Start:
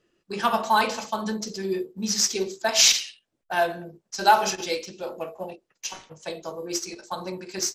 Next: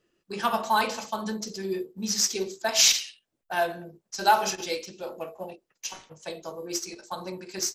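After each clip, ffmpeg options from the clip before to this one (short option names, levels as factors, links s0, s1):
-af "highshelf=f=11000:g=6.5,volume=0.708"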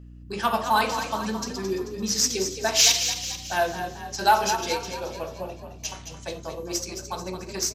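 -filter_complex "[0:a]asoftclip=type=tanh:threshold=0.501,aeval=exprs='val(0)+0.00562*(sin(2*PI*60*n/s)+sin(2*PI*2*60*n/s)/2+sin(2*PI*3*60*n/s)/3+sin(2*PI*4*60*n/s)/4+sin(2*PI*5*60*n/s)/5)':c=same,asplit=7[s0][s1][s2][s3][s4][s5][s6];[s1]adelay=219,afreqshift=35,volume=0.355[s7];[s2]adelay=438,afreqshift=70,volume=0.174[s8];[s3]adelay=657,afreqshift=105,volume=0.0851[s9];[s4]adelay=876,afreqshift=140,volume=0.0417[s10];[s5]adelay=1095,afreqshift=175,volume=0.0204[s11];[s6]adelay=1314,afreqshift=210,volume=0.01[s12];[s0][s7][s8][s9][s10][s11][s12]amix=inputs=7:normalize=0,volume=1.26"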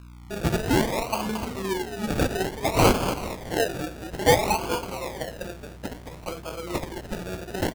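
-af "acrusher=samples=33:mix=1:aa=0.000001:lfo=1:lforange=19.8:lforate=0.58"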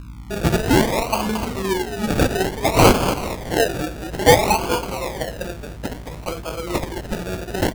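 -af "aeval=exprs='val(0)+0.00708*(sin(2*PI*50*n/s)+sin(2*PI*2*50*n/s)/2+sin(2*PI*3*50*n/s)/3+sin(2*PI*4*50*n/s)/4+sin(2*PI*5*50*n/s)/5)':c=same,volume=2"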